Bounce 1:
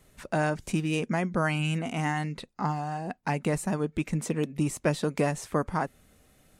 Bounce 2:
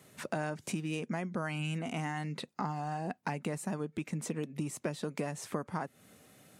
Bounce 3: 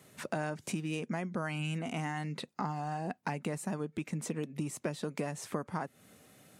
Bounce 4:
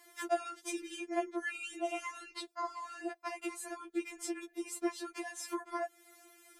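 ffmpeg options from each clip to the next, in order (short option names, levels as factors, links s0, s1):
-af "acompressor=threshold=0.0158:ratio=6,highpass=f=110:w=0.5412,highpass=f=110:w=1.3066,volume=1.41"
-af anull
-af "afftfilt=real='re*4*eq(mod(b,16),0)':imag='im*4*eq(mod(b,16),0)':win_size=2048:overlap=0.75,volume=1.5"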